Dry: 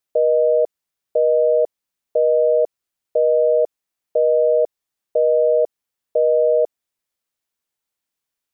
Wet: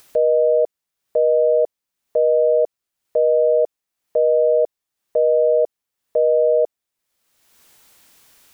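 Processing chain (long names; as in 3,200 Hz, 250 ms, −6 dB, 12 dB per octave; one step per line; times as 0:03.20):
upward compression, threshold −29 dBFS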